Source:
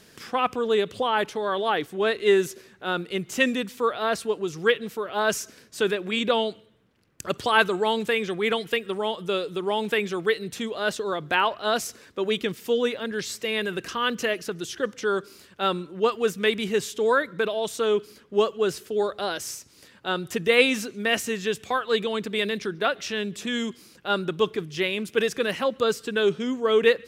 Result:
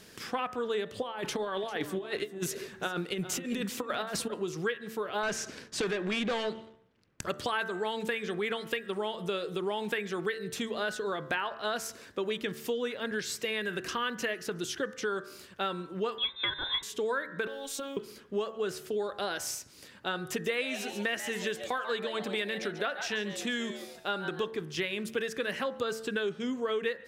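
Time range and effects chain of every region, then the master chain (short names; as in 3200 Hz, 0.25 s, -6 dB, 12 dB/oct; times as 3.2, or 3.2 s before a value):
1.02–4.34 negative-ratio compressor -29 dBFS, ratio -0.5 + echo 0.397 s -14 dB
5.23–7.21 hard clip -18.5 dBFS + sample leveller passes 2 + air absorption 60 m
16.18–16.83 comb 1.8 ms, depth 42% + inverted band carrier 3800 Hz
17.47–17.97 G.711 law mismatch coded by mu + compressor 12:1, threshold -29 dBFS + robotiser 275 Hz
20.3–24.51 bell 94 Hz -5.5 dB 1.6 oct + frequency-shifting echo 0.139 s, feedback 33%, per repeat +140 Hz, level -12.5 dB
whole clip: de-hum 74.26 Hz, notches 27; dynamic EQ 1700 Hz, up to +5 dB, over -40 dBFS, Q 2.5; compressor 5:1, threshold -30 dBFS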